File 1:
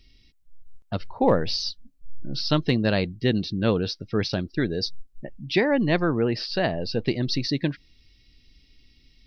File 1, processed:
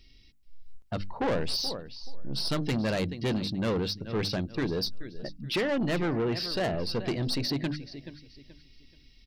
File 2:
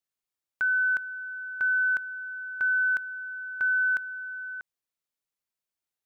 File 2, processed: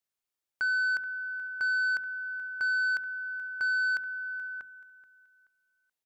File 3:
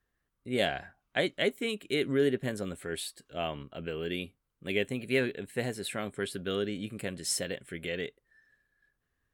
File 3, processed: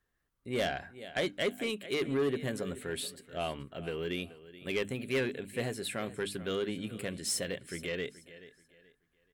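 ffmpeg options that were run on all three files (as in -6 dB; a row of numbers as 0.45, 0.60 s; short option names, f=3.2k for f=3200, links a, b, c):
-af "bandreject=f=50:t=h:w=6,bandreject=f=100:t=h:w=6,bandreject=f=150:t=h:w=6,bandreject=f=200:t=h:w=6,bandreject=f=250:t=h:w=6,bandreject=f=300:t=h:w=6,aecho=1:1:429|858|1287:0.133|0.0387|0.0112,asoftclip=type=tanh:threshold=-24dB"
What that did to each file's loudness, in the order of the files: -5.5, -2.5, -2.0 LU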